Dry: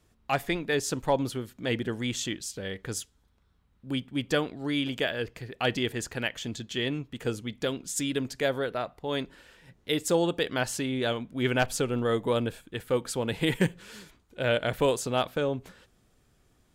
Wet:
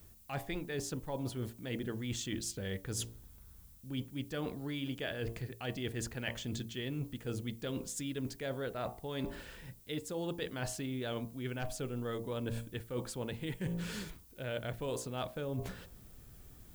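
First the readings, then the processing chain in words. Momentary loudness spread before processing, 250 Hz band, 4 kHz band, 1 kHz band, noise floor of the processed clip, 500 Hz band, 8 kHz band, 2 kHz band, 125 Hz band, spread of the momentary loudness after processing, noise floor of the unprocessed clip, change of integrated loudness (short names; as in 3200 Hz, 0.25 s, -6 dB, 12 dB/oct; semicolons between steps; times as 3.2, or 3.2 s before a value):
9 LU, -8.5 dB, -11.0 dB, -12.5 dB, -57 dBFS, -11.5 dB, -7.5 dB, -12.0 dB, -5.0 dB, 8 LU, -67 dBFS, -10.0 dB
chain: low shelf 190 Hz +10 dB; de-hum 57.48 Hz, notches 20; reverse; compressor 12:1, threshold -38 dBFS, peak gain reduction 22.5 dB; reverse; added noise violet -65 dBFS; gain +3 dB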